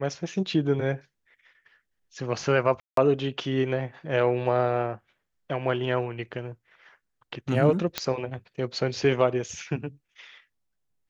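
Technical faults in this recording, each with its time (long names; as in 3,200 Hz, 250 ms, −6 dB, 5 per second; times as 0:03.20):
0:02.80–0:02.97: drop-out 173 ms
0:07.98: click −9 dBFS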